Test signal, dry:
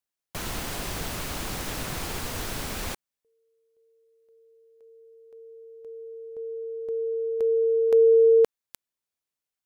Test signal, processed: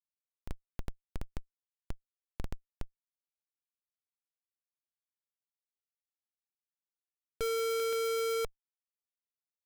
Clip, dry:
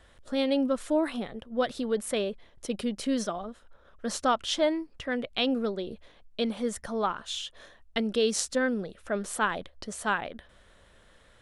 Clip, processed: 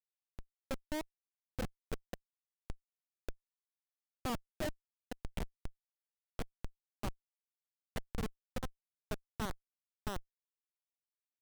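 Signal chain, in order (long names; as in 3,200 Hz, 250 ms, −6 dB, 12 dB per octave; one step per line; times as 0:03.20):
feedback delay that plays each chunk backwards 557 ms, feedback 48%, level −11 dB
low-pass filter 9,500 Hz 12 dB per octave
parametric band 260 Hz −8.5 dB 1.9 octaves
treble cut that deepens with the level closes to 1,300 Hz, closed at −27 dBFS
comparator with hysteresis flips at −25 dBFS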